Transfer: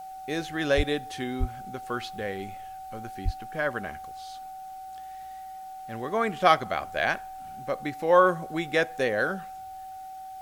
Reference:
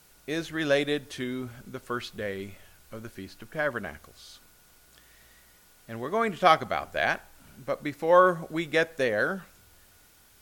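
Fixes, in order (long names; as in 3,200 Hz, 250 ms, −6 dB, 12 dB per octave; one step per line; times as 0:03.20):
notch filter 760 Hz, Q 30
0:00.76–0:00.88: high-pass filter 140 Hz 24 dB per octave
0:01.39–0:01.51: high-pass filter 140 Hz 24 dB per octave
0:03.24–0:03.36: high-pass filter 140 Hz 24 dB per octave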